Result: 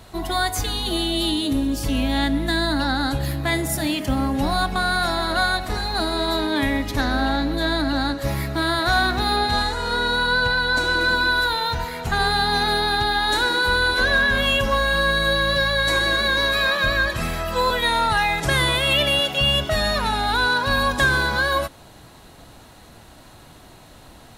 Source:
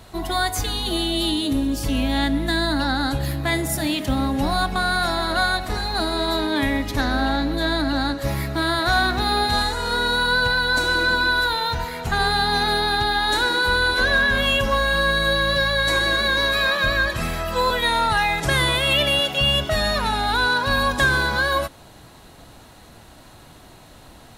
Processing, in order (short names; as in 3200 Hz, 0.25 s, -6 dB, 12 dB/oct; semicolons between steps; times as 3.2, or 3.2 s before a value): 3.91–4.35 notch 3800 Hz, Q 6.8; 9.36–11.01 high shelf 8600 Hz -8 dB